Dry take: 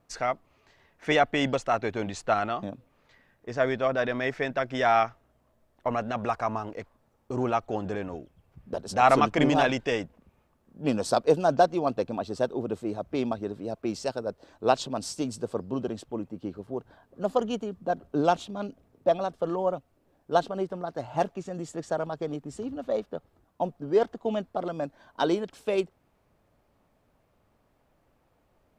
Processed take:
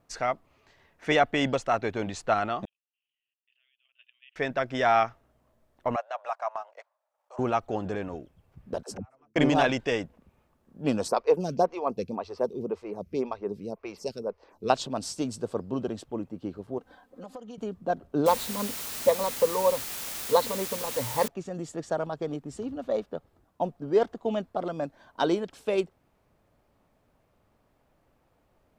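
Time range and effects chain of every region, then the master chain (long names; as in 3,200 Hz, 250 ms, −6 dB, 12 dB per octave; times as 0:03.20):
0:02.65–0:04.36: flat-topped band-pass 2,900 Hz, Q 5.9 + high-frequency loss of the air 280 metres + output level in coarse steps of 18 dB
0:05.96–0:07.39: Chebyshev high-pass filter 590 Hz, order 5 + tilt shelving filter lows +4.5 dB, about 910 Hz + transient designer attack −5 dB, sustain −9 dB
0:08.83–0:09.36: parametric band 3,600 Hz −13 dB 0.67 octaves + gate with flip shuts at −26 dBFS, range −42 dB + all-pass dispersion lows, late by 85 ms, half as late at 310 Hz
0:11.08–0:14.70: EQ curve with evenly spaced ripples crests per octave 0.83, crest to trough 7 dB + phaser with staggered stages 1.9 Hz
0:16.78–0:17.58: low-shelf EQ 170 Hz −8.5 dB + comb filter 3.9 ms, depth 94% + downward compressor 8 to 1, threshold −39 dBFS
0:18.26–0:21.28: EQ curve with evenly spaced ripples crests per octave 0.96, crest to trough 17 dB + bit-depth reduction 6 bits, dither triangular
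whole clip: no processing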